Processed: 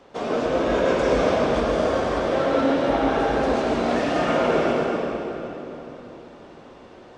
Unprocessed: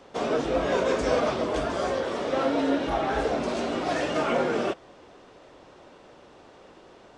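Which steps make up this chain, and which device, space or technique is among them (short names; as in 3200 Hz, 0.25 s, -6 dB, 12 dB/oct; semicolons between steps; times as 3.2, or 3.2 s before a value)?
swimming-pool hall (reverb RT60 3.5 s, pre-delay 88 ms, DRR -3 dB; high shelf 5600 Hz -6 dB)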